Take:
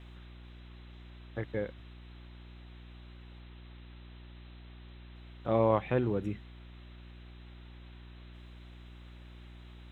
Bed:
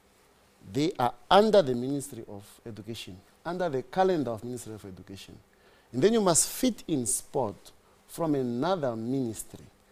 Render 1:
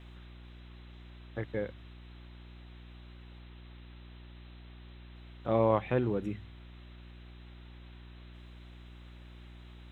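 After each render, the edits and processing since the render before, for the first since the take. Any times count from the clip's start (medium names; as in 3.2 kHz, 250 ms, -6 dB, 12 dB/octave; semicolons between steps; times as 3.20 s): de-hum 50 Hz, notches 3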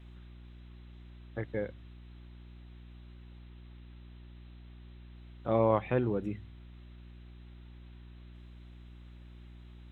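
noise reduction 6 dB, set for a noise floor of -51 dBFS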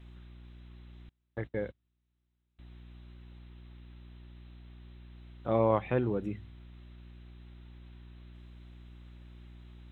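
1.09–2.59 s: gate -45 dBFS, range -29 dB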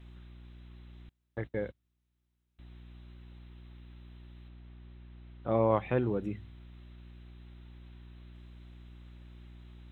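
4.48–5.71 s: distance through air 180 m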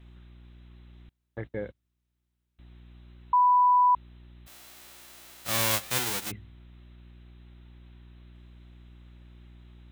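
3.33–3.95 s: bleep 990 Hz -17 dBFS; 4.46–6.30 s: formants flattened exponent 0.1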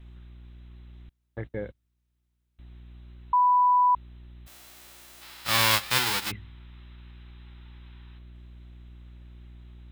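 5.22–8.18 s: time-frequency box 780–5500 Hz +7 dB; bass shelf 74 Hz +7.5 dB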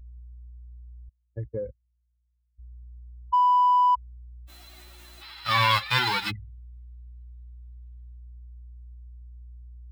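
spectral contrast enhancement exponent 2.3; in parallel at -9 dB: saturation -25.5 dBFS, distortion -9 dB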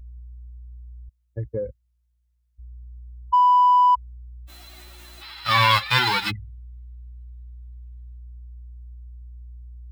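trim +4 dB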